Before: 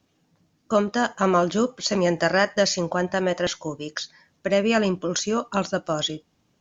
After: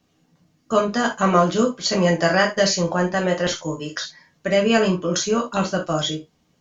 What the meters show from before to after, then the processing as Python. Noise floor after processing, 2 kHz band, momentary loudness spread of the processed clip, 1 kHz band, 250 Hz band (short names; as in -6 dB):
-65 dBFS, +3.0 dB, 11 LU, +3.5 dB, +3.0 dB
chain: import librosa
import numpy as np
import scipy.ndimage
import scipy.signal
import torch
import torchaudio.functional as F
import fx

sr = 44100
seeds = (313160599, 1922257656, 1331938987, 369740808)

y = fx.rev_gated(x, sr, seeds[0], gate_ms=100, shape='falling', drr_db=0.0)